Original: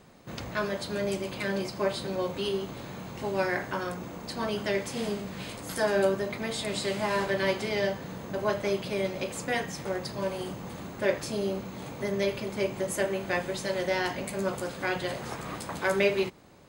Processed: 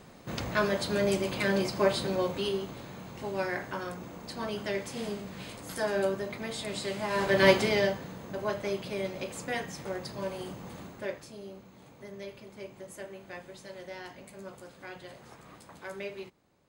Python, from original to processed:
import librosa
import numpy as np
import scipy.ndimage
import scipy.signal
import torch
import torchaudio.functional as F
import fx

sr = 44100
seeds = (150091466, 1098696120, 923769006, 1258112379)

y = fx.gain(x, sr, db=fx.line((1.98, 3.0), (2.89, -4.0), (7.08, -4.0), (7.48, 7.5), (8.14, -4.0), (10.81, -4.0), (11.33, -14.5)))